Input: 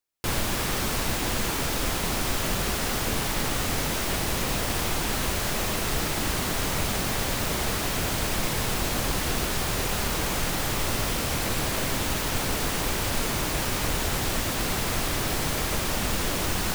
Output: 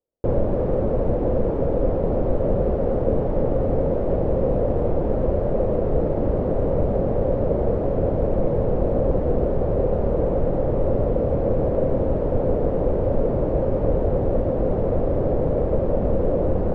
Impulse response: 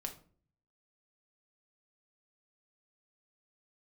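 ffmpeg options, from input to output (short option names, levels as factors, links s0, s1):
-af "lowpass=f=530:t=q:w=4.9,lowshelf=f=190:g=5.5,volume=1.33"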